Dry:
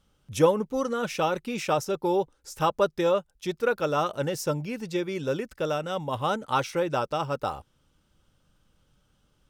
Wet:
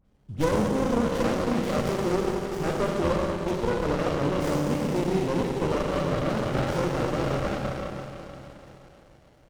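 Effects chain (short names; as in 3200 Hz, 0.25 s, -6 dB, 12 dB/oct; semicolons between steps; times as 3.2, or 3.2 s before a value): bell 1600 Hz -6 dB 1.1 oct; in parallel at -1.5 dB: negative-ratio compressor -30 dBFS; on the sum: dispersion highs, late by 58 ms, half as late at 1800 Hz; on a send: thin delay 0.985 s, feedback 57%, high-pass 2200 Hz, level -18.5 dB; on the sum: Schroeder reverb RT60 3.5 s, combs from 30 ms, DRR -2.5 dB; downsampling 22050 Hz; running maximum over 33 samples; gain -3.5 dB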